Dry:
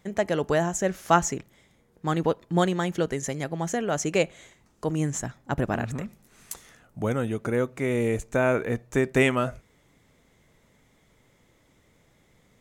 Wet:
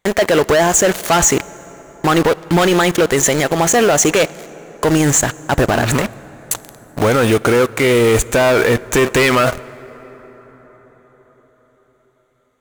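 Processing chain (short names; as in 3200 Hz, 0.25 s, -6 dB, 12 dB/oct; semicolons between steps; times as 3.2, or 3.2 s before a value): bell 180 Hz -7 dB 1.3 oct; notch 5200 Hz, Q 5.5; sample leveller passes 5; low shelf 360 Hz -5.5 dB; in parallel at -5 dB: bit-crush 4-bit; on the sum: limiter -10 dBFS, peak gain reduction 9 dB; on a send at -19.5 dB: reverb RT60 5.8 s, pre-delay 18 ms; on the sum: gain +4 dB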